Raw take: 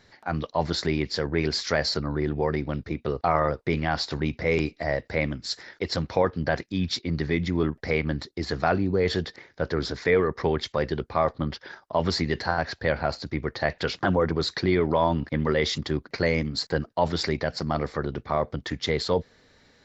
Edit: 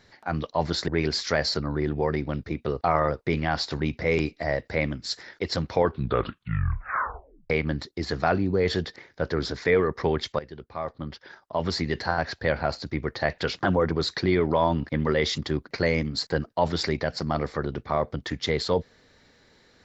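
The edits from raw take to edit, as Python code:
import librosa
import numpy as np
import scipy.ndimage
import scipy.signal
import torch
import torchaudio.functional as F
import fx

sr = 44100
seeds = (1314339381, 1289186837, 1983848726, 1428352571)

y = fx.edit(x, sr, fx.cut(start_s=0.88, length_s=0.4),
    fx.tape_stop(start_s=6.13, length_s=1.77),
    fx.fade_in_from(start_s=10.79, length_s=1.79, floor_db=-16.0), tone=tone)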